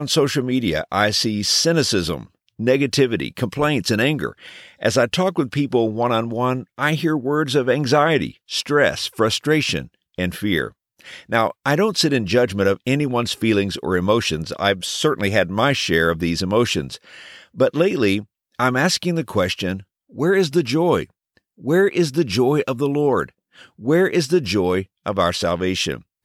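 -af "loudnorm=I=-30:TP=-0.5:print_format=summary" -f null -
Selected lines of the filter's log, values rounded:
Input Integrated:    -19.6 LUFS
Input True Peak:      -2.0 dBTP
Input LRA:             1.9 LU
Input Threshold:     -30.1 LUFS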